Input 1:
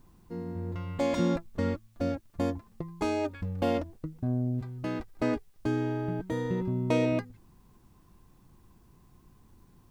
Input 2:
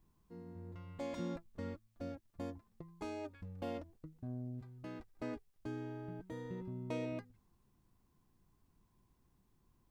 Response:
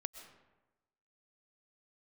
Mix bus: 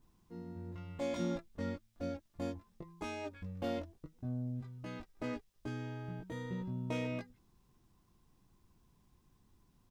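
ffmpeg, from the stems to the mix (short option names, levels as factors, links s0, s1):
-filter_complex "[0:a]volume=0.251[s0];[1:a]equalizer=f=4400:t=o:w=2:g=9,volume=53.1,asoftclip=hard,volume=0.0188,volume=-1,adelay=19,volume=0.75[s1];[s0][s1]amix=inputs=2:normalize=0,bandreject=f=4400:w=22"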